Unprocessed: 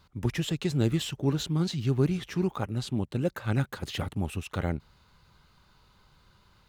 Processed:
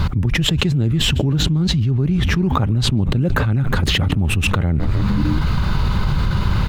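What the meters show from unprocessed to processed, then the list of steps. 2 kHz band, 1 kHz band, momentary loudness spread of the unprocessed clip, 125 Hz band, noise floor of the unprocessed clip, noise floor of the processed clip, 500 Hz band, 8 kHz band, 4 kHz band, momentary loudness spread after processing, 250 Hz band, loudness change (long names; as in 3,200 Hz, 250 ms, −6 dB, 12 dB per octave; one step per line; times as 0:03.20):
+16.0 dB, +13.5 dB, 7 LU, +13.5 dB, −63 dBFS, −21 dBFS, +5.5 dB, +12.5 dB, +16.5 dB, 3 LU, +10.5 dB, +11.5 dB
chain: bass and treble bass +11 dB, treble −8 dB
echo with shifted repeats 152 ms, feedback 62%, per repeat −97 Hz, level −23.5 dB
envelope flattener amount 100%
level −3.5 dB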